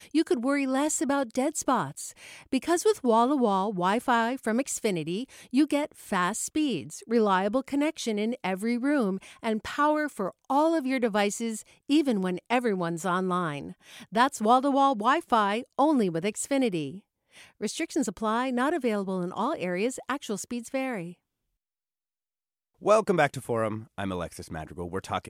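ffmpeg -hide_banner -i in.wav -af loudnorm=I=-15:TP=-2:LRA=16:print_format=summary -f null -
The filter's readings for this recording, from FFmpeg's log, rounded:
Input Integrated:    -27.3 LUFS
Input True Peak:      -8.6 dBTP
Input LRA:             4.3 LU
Input Threshold:     -37.6 LUFS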